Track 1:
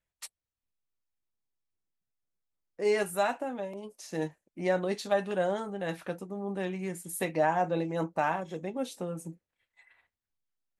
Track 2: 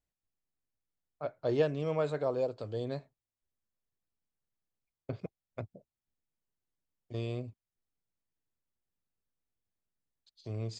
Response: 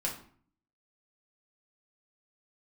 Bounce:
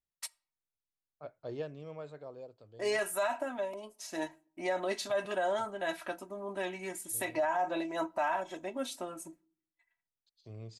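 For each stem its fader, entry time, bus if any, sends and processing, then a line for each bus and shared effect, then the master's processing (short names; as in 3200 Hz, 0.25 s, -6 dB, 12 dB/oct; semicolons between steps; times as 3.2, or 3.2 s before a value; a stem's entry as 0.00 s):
-0.5 dB, 0.00 s, send -22 dB, expander -47 dBFS; resonant low shelf 540 Hz -6 dB, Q 1.5; comb 3.1 ms, depth 80%
-9.0 dB, 0.00 s, no send, auto duck -9 dB, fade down 1.50 s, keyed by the first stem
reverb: on, RT60 0.50 s, pre-delay 5 ms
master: limiter -23 dBFS, peak gain reduction 9.5 dB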